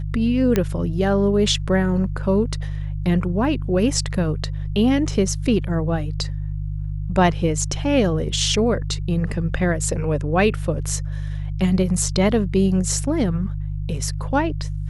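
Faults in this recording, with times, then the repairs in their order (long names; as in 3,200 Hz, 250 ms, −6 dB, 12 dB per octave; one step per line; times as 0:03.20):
mains hum 50 Hz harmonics 3 −26 dBFS
0:00.56: click −6 dBFS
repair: click removal
hum removal 50 Hz, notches 3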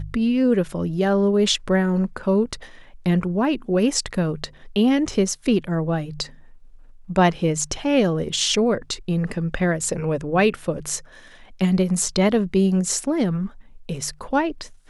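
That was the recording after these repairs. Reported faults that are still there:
none of them is left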